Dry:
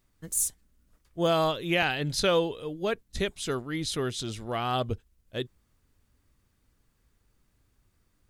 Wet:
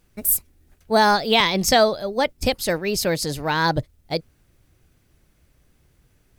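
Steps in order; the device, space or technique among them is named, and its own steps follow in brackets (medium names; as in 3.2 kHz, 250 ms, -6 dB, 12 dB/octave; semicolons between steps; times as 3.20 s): nightcore (tape speed +30%); trim +8.5 dB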